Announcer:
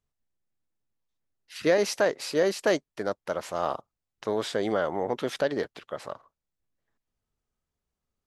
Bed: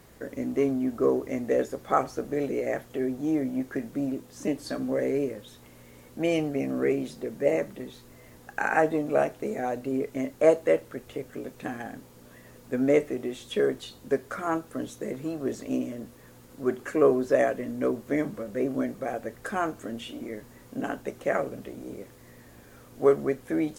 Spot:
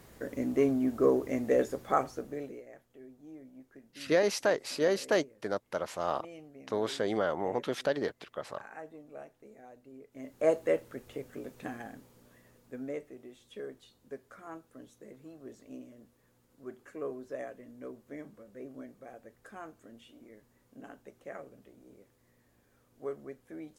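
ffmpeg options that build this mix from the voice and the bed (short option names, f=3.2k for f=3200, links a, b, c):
-filter_complex "[0:a]adelay=2450,volume=-3.5dB[a];[1:a]volume=16dB,afade=t=out:st=1.71:d=0.95:silence=0.0841395,afade=t=in:st=10.1:d=0.45:silence=0.133352,afade=t=out:st=11.61:d=1.36:silence=0.251189[b];[a][b]amix=inputs=2:normalize=0"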